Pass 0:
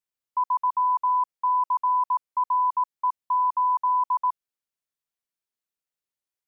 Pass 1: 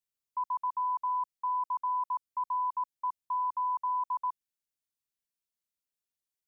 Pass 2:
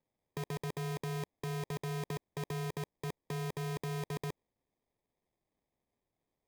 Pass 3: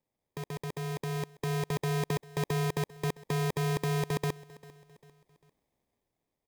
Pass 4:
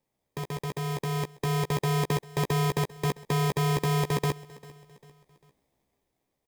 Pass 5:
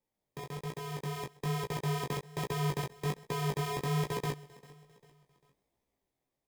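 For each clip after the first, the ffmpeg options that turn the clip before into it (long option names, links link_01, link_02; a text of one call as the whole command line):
ffmpeg -i in.wav -af "equalizer=frequency=910:width=0.37:gain=-8,acontrast=84,volume=-7.5dB" out.wav
ffmpeg -i in.wav -af "acrusher=samples=31:mix=1:aa=0.000001,aeval=exprs='0.0211*(abs(mod(val(0)/0.0211+3,4)-2)-1)':channel_layout=same,volume=3dB" out.wav
ffmpeg -i in.wav -af "dynaudnorm=framelen=510:gausssize=5:maxgain=8dB,aecho=1:1:397|794|1191:0.0944|0.0415|0.0183" out.wav
ffmpeg -i in.wav -filter_complex "[0:a]asplit=2[link_01][link_02];[link_02]adelay=15,volume=-6dB[link_03];[link_01][link_03]amix=inputs=2:normalize=0,volume=4dB" out.wav
ffmpeg -i in.wav -af "flanger=delay=17:depth=6.2:speed=1.2,volume=-3.5dB" out.wav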